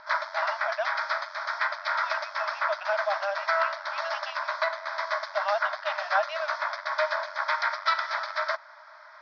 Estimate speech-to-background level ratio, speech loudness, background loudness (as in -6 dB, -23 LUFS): -4.0 dB, -33.5 LUFS, -29.5 LUFS